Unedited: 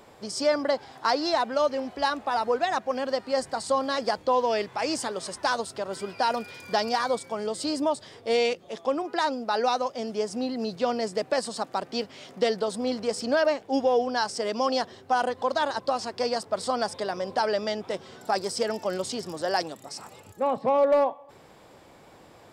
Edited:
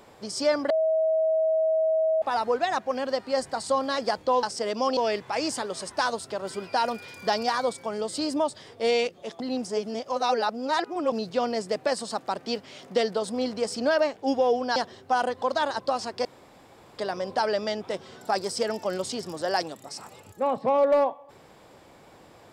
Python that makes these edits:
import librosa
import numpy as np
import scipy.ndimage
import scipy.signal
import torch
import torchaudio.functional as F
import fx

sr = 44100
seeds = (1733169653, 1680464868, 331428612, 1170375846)

y = fx.edit(x, sr, fx.bleep(start_s=0.7, length_s=1.52, hz=639.0, db=-20.0),
    fx.reverse_span(start_s=8.86, length_s=1.72),
    fx.move(start_s=14.22, length_s=0.54, to_s=4.43),
    fx.room_tone_fill(start_s=16.25, length_s=0.73), tone=tone)